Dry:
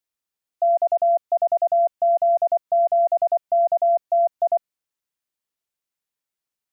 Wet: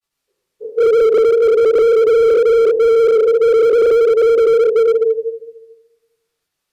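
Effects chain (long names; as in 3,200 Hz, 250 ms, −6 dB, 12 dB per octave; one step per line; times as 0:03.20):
phase-vocoder pitch shift without resampling −7 semitones
granular cloud 72 ms, grains 23 per second, spray 319 ms, pitch spread up and down by 0 semitones
convolution reverb RT60 1.1 s, pre-delay 3 ms, DRR −10.5 dB
slew-rate limiting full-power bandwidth 150 Hz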